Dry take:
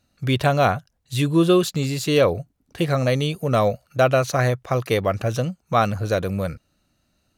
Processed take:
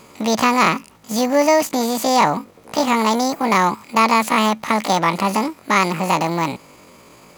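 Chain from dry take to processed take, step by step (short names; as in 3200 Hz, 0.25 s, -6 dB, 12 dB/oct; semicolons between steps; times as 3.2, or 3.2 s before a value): per-bin compression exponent 0.6; pitch shift +9.5 st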